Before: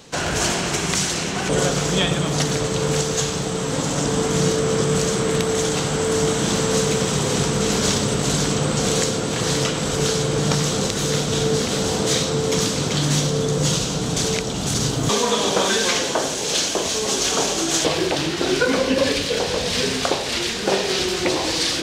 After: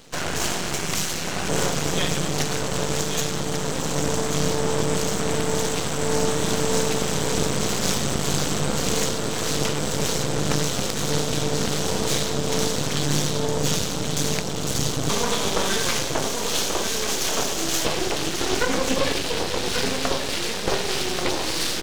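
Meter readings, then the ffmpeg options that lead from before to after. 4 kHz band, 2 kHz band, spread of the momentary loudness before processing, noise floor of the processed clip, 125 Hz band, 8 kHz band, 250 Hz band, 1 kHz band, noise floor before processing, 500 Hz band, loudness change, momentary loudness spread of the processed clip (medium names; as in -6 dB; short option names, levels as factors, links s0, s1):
-3.5 dB, -3.0 dB, 3 LU, -27 dBFS, -4.5 dB, -3.0 dB, -4.0 dB, -2.5 dB, -25 dBFS, -4.5 dB, -3.5 dB, 3 LU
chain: -af "aecho=1:1:1136:0.473,aeval=exprs='max(val(0),0)':c=same"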